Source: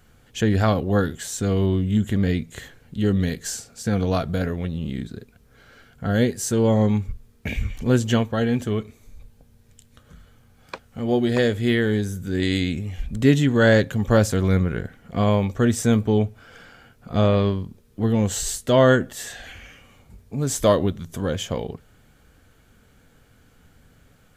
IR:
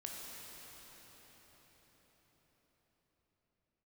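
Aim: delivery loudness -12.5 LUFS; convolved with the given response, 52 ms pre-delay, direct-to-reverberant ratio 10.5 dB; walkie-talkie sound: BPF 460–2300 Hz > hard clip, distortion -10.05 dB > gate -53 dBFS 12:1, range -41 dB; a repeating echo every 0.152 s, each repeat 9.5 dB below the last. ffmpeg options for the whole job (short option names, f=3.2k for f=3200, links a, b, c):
-filter_complex "[0:a]aecho=1:1:152|304|456|608:0.335|0.111|0.0365|0.012,asplit=2[a][b];[1:a]atrim=start_sample=2205,adelay=52[c];[b][c]afir=irnorm=-1:irlink=0,volume=-9.5dB[d];[a][d]amix=inputs=2:normalize=0,highpass=460,lowpass=2.3k,asoftclip=type=hard:threshold=-19dB,agate=range=-41dB:threshold=-53dB:ratio=12,volume=16.5dB"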